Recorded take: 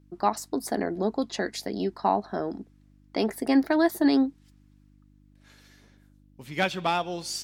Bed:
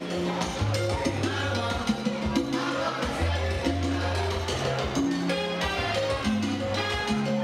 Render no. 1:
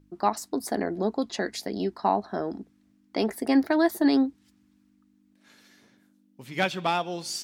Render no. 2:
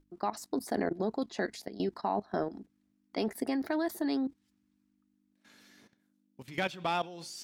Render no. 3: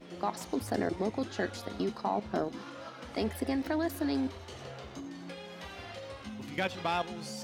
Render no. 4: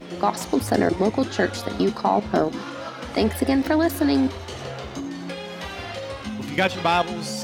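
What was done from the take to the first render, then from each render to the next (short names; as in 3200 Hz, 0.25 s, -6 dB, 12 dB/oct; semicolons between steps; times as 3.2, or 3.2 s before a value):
de-hum 50 Hz, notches 3
limiter -16 dBFS, peak gain reduction 5 dB; level quantiser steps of 15 dB
add bed -17 dB
gain +11.5 dB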